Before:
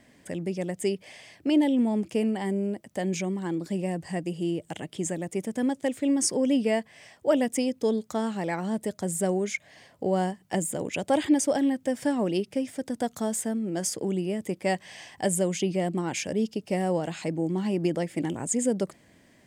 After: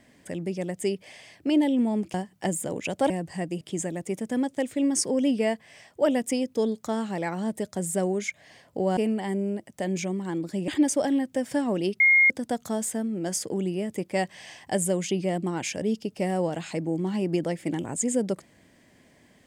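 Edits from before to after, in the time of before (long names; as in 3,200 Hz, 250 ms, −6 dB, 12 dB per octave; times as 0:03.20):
0:02.14–0:03.85: swap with 0:10.23–0:11.19
0:04.36–0:04.87: remove
0:12.51–0:12.81: beep over 2,140 Hz −14.5 dBFS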